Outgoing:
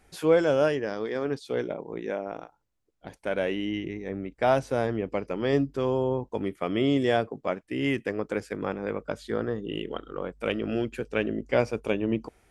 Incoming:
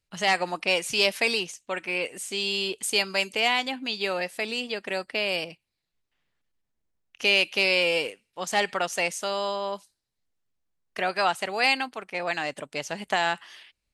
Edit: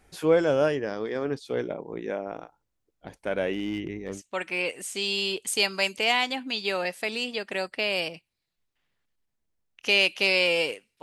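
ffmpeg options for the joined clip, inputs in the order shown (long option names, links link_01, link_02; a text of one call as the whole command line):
ffmpeg -i cue0.wav -i cue1.wav -filter_complex "[0:a]asettb=1/sr,asplit=3[link_01][link_02][link_03];[link_01]atrim=end=3.534[link_04];[link_02]atrim=start=3.53:end=4.22,asetpts=PTS-STARTPTS,afade=type=in:duration=0.004:curve=qsin,afade=type=out:start_time=0.686:duration=0.004:curve=qsin,volume=24dB,asoftclip=hard,volume=-24dB[link_05];[link_03]atrim=start=4.216[link_06];[link_04][link_05]acrossfade=duration=0.004:curve1=hsin:curve2=qsin[link_07];[link_07][link_06]acrossfade=duration=0.004:curve1=qsin:curve2=hsin,apad=whole_dur=11.02,atrim=end=11.02,atrim=end=4.22,asetpts=PTS-STARTPTS[link_08];[1:a]atrim=start=1.46:end=8.38,asetpts=PTS-STARTPTS[link_09];[link_08][link_09]acrossfade=duration=0.12:curve1=tri:curve2=tri" out.wav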